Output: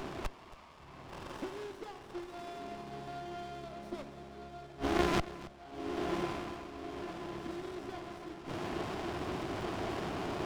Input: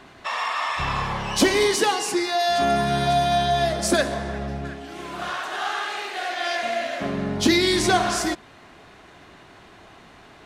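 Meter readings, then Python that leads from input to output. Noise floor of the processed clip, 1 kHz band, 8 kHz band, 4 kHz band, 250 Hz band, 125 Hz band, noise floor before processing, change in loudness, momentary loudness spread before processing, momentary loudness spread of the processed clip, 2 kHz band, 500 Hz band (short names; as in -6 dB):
-54 dBFS, -17.0 dB, -24.5 dB, -20.5 dB, -12.5 dB, -13.0 dB, -49 dBFS, -17.0 dB, 11 LU, 13 LU, -18.5 dB, -15.5 dB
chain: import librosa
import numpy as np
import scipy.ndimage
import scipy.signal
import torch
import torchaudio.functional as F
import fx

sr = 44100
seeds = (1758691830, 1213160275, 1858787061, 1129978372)

p1 = scipy.signal.savgol_filter(x, 15, 4, mode='constant')
p2 = fx.gate_flip(p1, sr, shuts_db=-23.0, range_db=-35)
p3 = fx.notch(p2, sr, hz=2000.0, q=12.0)
p4 = fx.small_body(p3, sr, hz=(350.0, 2000.0, 3200.0), ring_ms=45, db=6)
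p5 = fx.cheby_harmonics(p4, sr, harmonics=(4,), levels_db=(-12,), full_scale_db=-21.5)
p6 = scipy.signal.sosfilt(scipy.signal.butter(2, 57.0, 'highpass', fs=sr, output='sos'), p5)
p7 = p6 + 10.0 ** (-16.5 / 20.0) * np.pad(p6, (int(274 * sr / 1000.0), 0))[:len(p6)]
p8 = fx.rider(p7, sr, range_db=4, speed_s=2.0)
p9 = p8 + fx.echo_diffused(p8, sr, ms=1137, feedback_pct=55, wet_db=-7.0, dry=0)
p10 = fx.running_max(p9, sr, window=17)
y = F.gain(torch.from_numpy(p10), 7.5).numpy()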